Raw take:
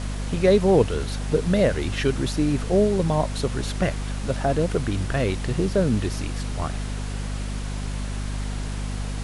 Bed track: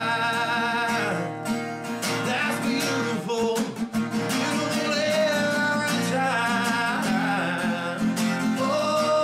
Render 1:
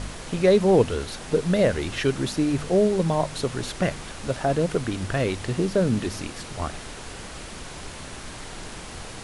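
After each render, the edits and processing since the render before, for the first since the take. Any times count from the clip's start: de-hum 50 Hz, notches 5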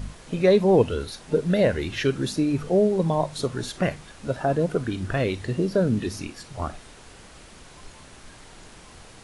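noise print and reduce 9 dB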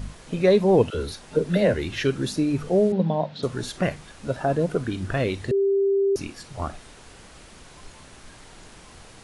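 0.90–1.74 s: phase dispersion lows, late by 43 ms, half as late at 600 Hz; 2.92–3.43 s: cabinet simulation 150–4000 Hz, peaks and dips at 210 Hz +10 dB, 360 Hz -7 dB, 1.1 kHz -8 dB, 2.2 kHz -4 dB; 5.51–6.16 s: bleep 394 Hz -17.5 dBFS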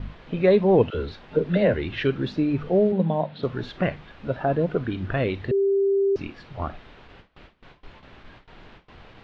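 low-pass 3.5 kHz 24 dB/octave; gate with hold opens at -37 dBFS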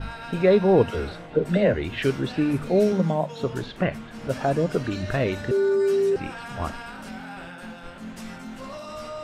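add bed track -14 dB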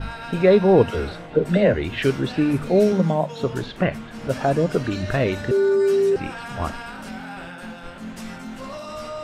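trim +3 dB

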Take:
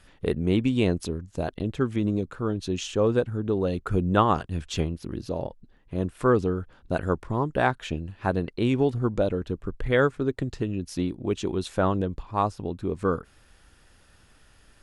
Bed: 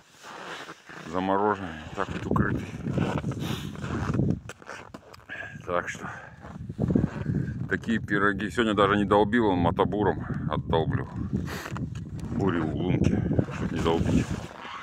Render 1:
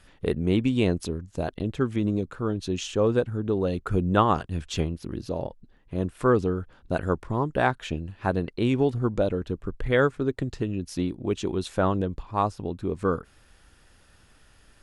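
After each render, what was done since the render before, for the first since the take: no audible change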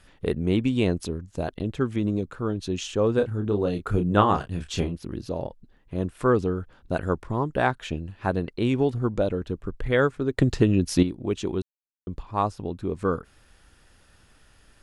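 3.15–4.95 s: doubling 29 ms -6.5 dB; 10.38–11.03 s: gain +9 dB; 11.62–12.07 s: mute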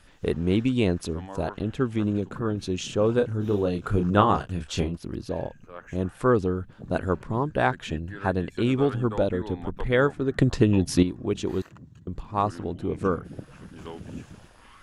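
add bed -15 dB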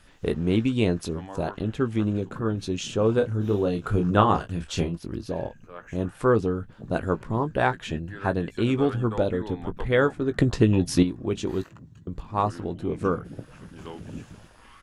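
doubling 18 ms -11 dB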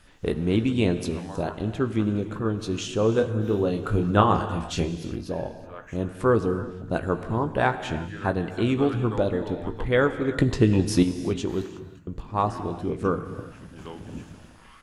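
gated-style reverb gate 390 ms flat, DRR 10 dB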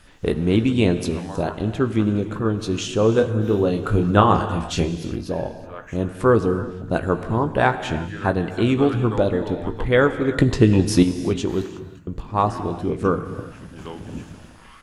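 trim +4.5 dB; peak limiter -1 dBFS, peak gain reduction 1.5 dB

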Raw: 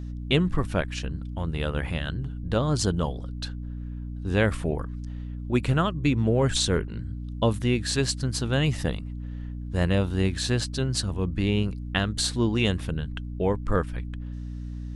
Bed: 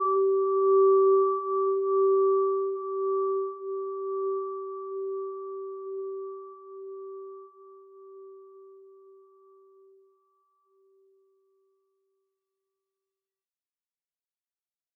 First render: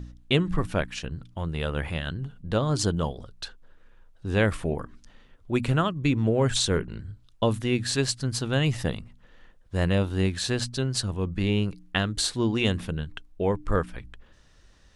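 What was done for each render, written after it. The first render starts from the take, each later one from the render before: de-hum 60 Hz, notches 5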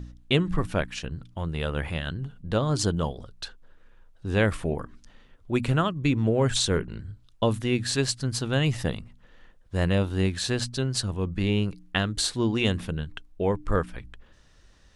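no audible change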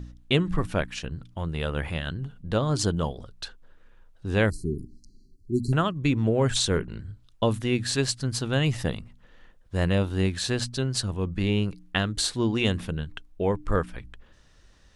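4.50–5.73 s: brick-wall FIR band-stop 420–4000 Hz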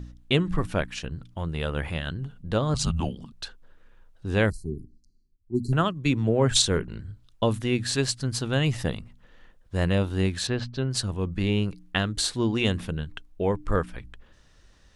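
2.74–3.32 s: frequency shift -250 Hz; 4.52–6.62 s: three bands expanded up and down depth 70%; 10.47–10.91 s: distance through air 220 m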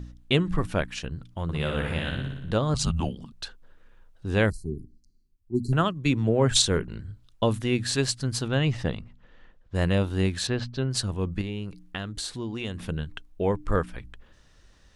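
1.43–2.51 s: flutter echo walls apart 10.1 m, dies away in 0.92 s; 8.48–9.75 s: distance through air 95 m; 11.41–12.88 s: compression 2:1, threshold -35 dBFS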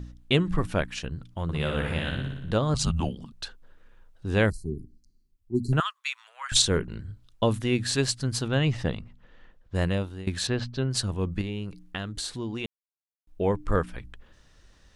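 5.80–6.52 s: steep high-pass 1.1 kHz; 9.75–10.27 s: fade out, to -20 dB; 12.66–13.27 s: mute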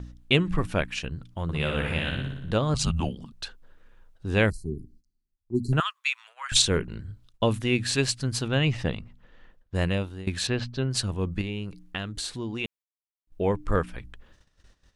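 gate -54 dBFS, range -13 dB; dynamic bell 2.5 kHz, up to +6 dB, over -47 dBFS, Q 2.8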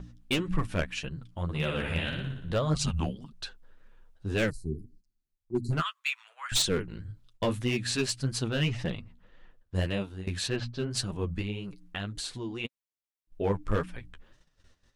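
hard clipper -17.5 dBFS, distortion -15 dB; flange 1.8 Hz, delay 4.9 ms, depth 8 ms, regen +16%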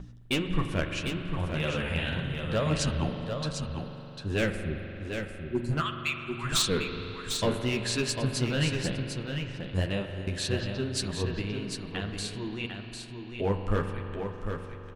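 delay 749 ms -6.5 dB; spring tank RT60 3.8 s, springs 42 ms, chirp 30 ms, DRR 6 dB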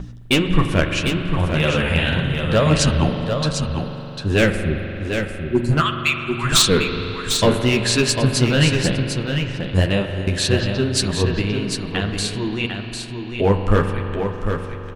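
trim +11.5 dB

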